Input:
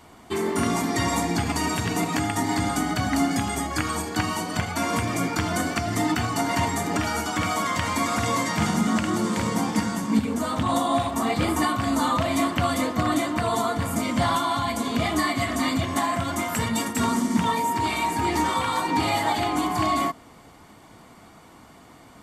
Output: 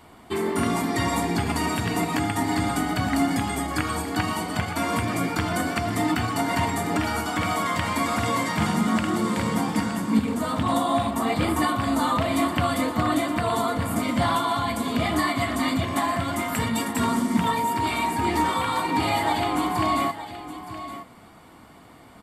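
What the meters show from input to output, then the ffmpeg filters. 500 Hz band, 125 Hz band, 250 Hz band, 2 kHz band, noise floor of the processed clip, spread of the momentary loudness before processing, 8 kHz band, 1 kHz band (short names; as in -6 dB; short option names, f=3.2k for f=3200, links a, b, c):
0.0 dB, 0.0 dB, +0.5 dB, 0.0 dB, -49 dBFS, 3 LU, -3.0 dB, 0.0 dB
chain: -filter_complex "[0:a]equalizer=f=6.2k:t=o:w=0.46:g=-8.5,asplit=2[a][b];[b]aecho=0:1:919:0.237[c];[a][c]amix=inputs=2:normalize=0"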